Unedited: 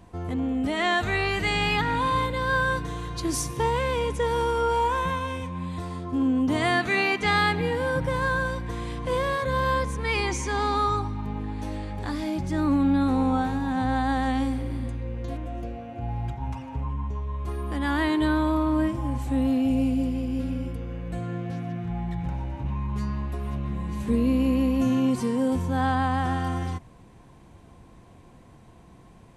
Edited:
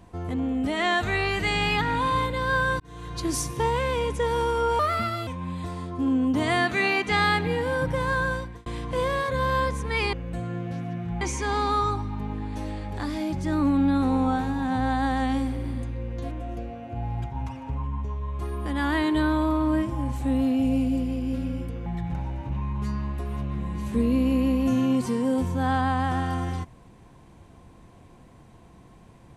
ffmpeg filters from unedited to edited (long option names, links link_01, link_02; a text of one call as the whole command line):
ffmpeg -i in.wav -filter_complex "[0:a]asplit=8[link_01][link_02][link_03][link_04][link_05][link_06][link_07][link_08];[link_01]atrim=end=2.8,asetpts=PTS-STARTPTS,afade=type=out:start_time=2.796:duration=0.004:curve=hsin[link_09];[link_02]atrim=start=2.8:end=4.794,asetpts=PTS-STARTPTS,afade=type=in:duration=0.39[link_10];[link_03]atrim=start=4.79:end=5.41,asetpts=PTS-STARTPTS,asetrate=56889,aresample=44100,atrim=end_sample=21195,asetpts=PTS-STARTPTS[link_11];[link_04]atrim=start=5.406:end=8.8,asetpts=PTS-STARTPTS,afade=type=out:start_time=3.074:duration=0.32[link_12];[link_05]atrim=start=8.8:end=10.272,asetpts=PTS-STARTPTS,afade=type=in:duration=0.004:curve=hsin[link_13];[link_06]atrim=start=20.918:end=22.002[link_14];[link_07]atrim=start=10.268:end=20.922[link_15];[link_08]atrim=start=21.998[link_16];[link_09][link_10]concat=n=2:v=0:a=1[link_17];[link_17][link_11]acrossfade=duration=0.004:curve1=hsin:curve2=hsin[link_18];[link_12][link_13]concat=n=2:v=0:a=1[link_19];[link_18][link_19]acrossfade=duration=0.004:curve1=hsin:curve2=hsin[link_20];[link_20][link_14]acrossfade=duration=0.004:curve1=hsin:curve2=hsin[link_21];[link_21][link_15]acrossfade=duration=0.004:curve1=hsin:curve2=hsin[link_22];[link_22][link_16]acrossfade=duration=0.004:curve1=hsin:curve2=hsin" out.wav